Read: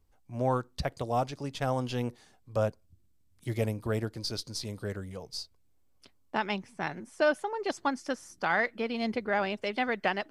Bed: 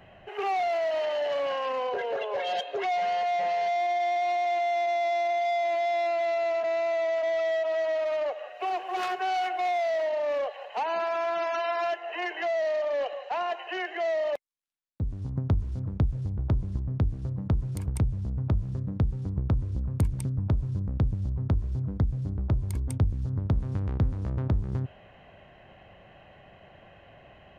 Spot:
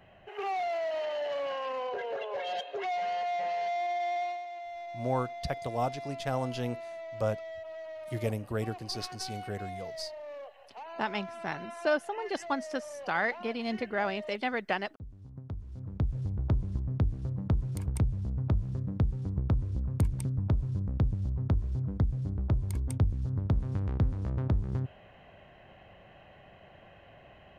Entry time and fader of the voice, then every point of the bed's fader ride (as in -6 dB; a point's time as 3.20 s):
4.65 s, -2.0 dB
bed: 4.22 s -5 dB
4.47 s -15 dB
15.50 s -15 dB
16.17 s -2 dB